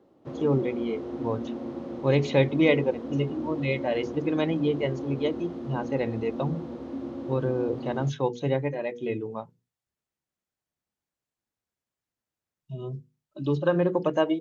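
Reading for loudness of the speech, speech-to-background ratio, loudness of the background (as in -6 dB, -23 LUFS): -28.0 LUFS, 8.0 dB, -36.0 LUFS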